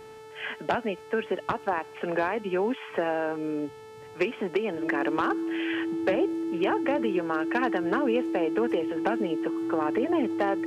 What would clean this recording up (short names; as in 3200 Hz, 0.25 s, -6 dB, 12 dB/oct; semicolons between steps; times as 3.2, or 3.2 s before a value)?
clip repair -16.5 dBFS; de-hum 438 Hz, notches 31; notch 330 Hz, Q 30